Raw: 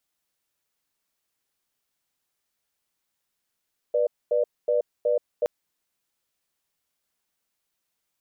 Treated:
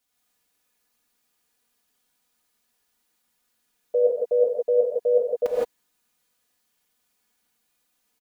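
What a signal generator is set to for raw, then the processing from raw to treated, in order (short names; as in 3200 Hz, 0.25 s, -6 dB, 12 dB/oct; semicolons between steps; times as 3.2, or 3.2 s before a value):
cadence 488 Hz, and 596 Hz, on 0.13 s, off 0.24 s, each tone -22 dBFS 1.52 s
comb 4.1 ms, depth 60%; non-linear reverb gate 0.19 s rising, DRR -4.5 dB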